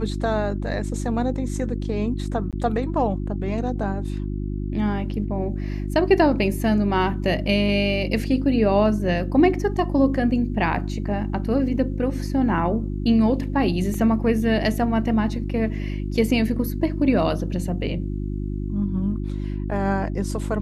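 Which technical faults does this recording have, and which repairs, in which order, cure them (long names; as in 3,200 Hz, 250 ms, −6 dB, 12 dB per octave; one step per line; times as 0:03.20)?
mains hum 50 Hz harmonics 7 −27 dBFS
0:02.51–0:02.53: drop-out 17 ms
0:13.94: drop-out 2.3 ms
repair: hum removal 50 Hz, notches 7
repair the gap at 0:02.51, 17 ms
repair the gap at 0:13.94, 2.3 ms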